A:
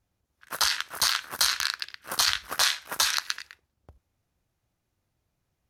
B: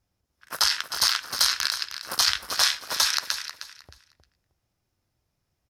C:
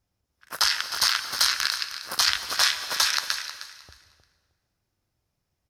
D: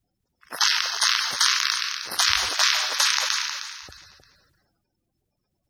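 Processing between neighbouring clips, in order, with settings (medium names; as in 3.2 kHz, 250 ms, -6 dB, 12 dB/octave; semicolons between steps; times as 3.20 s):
peaking EQ 5.2 kHz +8.5 dB 0.21 oct; feedback delay 311 ms, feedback 22%, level -11 dB
dynamic bell 1.9 kHz, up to +4 dB, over -35 dBFS, Q 0.79; plate-style reverb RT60 1.5 s, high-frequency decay 0.9×, pre-delay 115 ms, DRR 12.5 dB; trim -1.5 dB
coarse spectral quantiser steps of 30 dB; decay stretcher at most 35 dB/s; trim +1 dB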